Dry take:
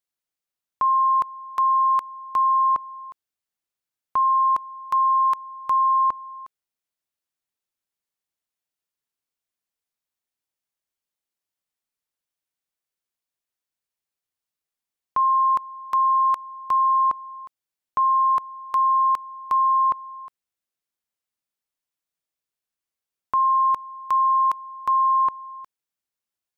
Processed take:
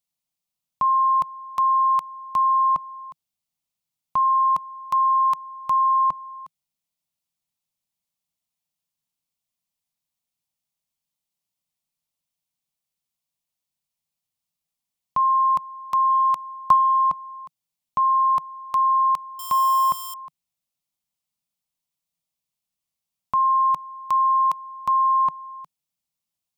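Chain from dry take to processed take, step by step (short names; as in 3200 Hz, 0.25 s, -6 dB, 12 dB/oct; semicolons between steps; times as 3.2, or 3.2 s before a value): 19.39–20.14 switching spikes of -25.5 dBFS; fifteen-band EQ 160 Hz +8 dB, 400 Hz -11 dB, 1600 Hz -11 dB; 16.1–17.14 transient shaper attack +8 dB, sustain +2 dB; gain +3.5 dB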